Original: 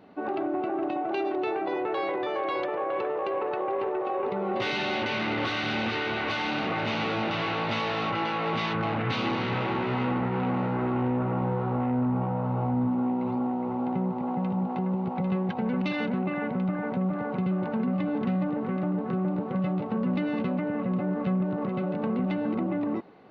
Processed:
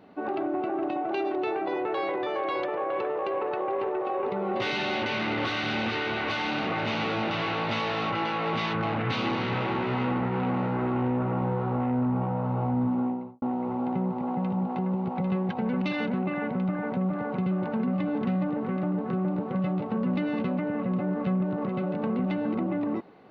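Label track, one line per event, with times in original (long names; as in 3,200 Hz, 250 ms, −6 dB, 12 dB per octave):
12.980000	13.420000	fade out and dull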